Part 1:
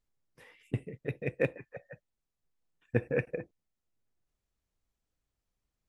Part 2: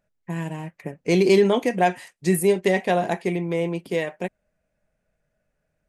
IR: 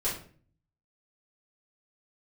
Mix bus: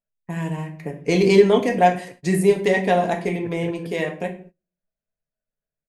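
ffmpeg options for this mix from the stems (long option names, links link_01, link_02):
-filter_complex "[0:a]adelay=500,volume=-12dB,asplit=2[link_01][link_02];[link_02]volume=-6dB[link_03];[1:a]volume=-1.5dB,asplit=2[link_04][link_05];[link_05]volume=-8.5dB[link_06];[2:a]atrim=start_sample=2205[link_07];[link_06][link_07]afir=irnorm=-1:irlink=0[link_08];[link_03]aecho=0:1:167:1[link_09];[link_01][link_04][link_08][link_09]amix=inputs=4:normalize=0,acrossover=split=9600[link_10][link_11];[link_11]acompressor=threshold=-55dB:ratio=4:attack=1:release=60[link_12];[link_10][link_12]amix=inputs=2:normalize=0,agate=range=-21dB:threshold=-44dB:ratio=16:detection=peak"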